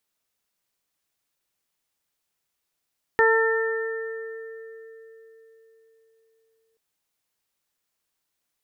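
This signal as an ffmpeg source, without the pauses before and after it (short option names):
-f lavfi -i "aevalsrc='0.133*pow(10,-3*t/4.19)*sin(2*PI*449*t)+0.0841*pow(10,-3*t/1.58)*sin(2*PI*898*t)+0.0562*pow(10,-3*t/2.43)*sin(2*PI*1347*t)+0.126*pow(10,-3*t/2.86)*sin(2*PI*1796*t)':d=3.58:s=44100"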